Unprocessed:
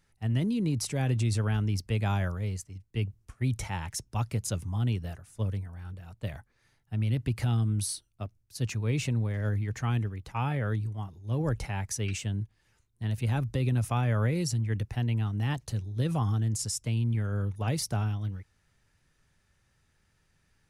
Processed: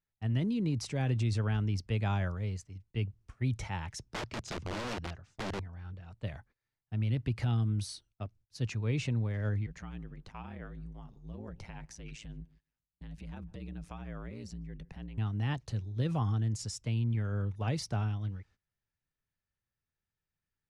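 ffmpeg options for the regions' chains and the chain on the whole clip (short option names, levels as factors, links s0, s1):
-filter_complex "[0:a]asettb=1/sr,asplit=3[s0][s1][s2];[s0]atrim=end=4.144[s3];[s1]atrim=start=4.14:end=6.11,asetpts=PTS-STARTPTS,afade=t=in:d=0.004:c=qsin,afade=t=out:st=1.966:d=0.004:c=qsin,lowpass=f=7000:w=0.5412,lowpass=f=7000:w=1.3066,aeval=exprs='(mod(28.2*val(0)+1,2)-1)/28.2':c=same[s4];[s2]atrim=start=6.106[s5];[s3][s4]acrossfade=d=0.004:c1=hsin:c2=qsin[s6];[s6][s5]acrossfade=d=0.004:c1=qsin:c2=hsin,asettb=1/sr,asplit=3[s7][s8][s9];[s7]atrim=end=9.664[s10];[s8]atrim=start=9.66:end=15.18,asetpts=PTS-STARTPTS,afade=t=in:d=0.004:c=qsin,afade=t=out:st=5.516:d=0.004:c=qsin,acompressor=threshold=0.0141:ratio=3:attack=3.2:release=140:knee=1:detection=peak,aeval=exprs='val(0)*sin(2*PI*55*n/s)':c=same,asplit=2[s11][s12];[s12]adelay=150,lowpass=f=970:p=1,volume=0.0891,asplit=2[s13][s14];[s14]adelay=150,lowpass=f=970:p=1,volume=0.38,asplit=2[s15][s16];[s16]adelay=150,lowpass=f=970:p=1,volume=0.38[s17];[s11][s13][s15][s17]amix=inputs=4:normalize=0,atrim=end_sample=243432[s18];[s9]atrim=start=15.176[s19];[s10][s18]acrossfade=d=0.004:c1=hsin:c2=qsin[s20];[s20][s19]acrossfade=d=0.004:c1=qsin:c2=hsin,agate=range=0.112:threshold=0.00158:ratio=16:detection=peak,lowpass=5500,volume=0.708"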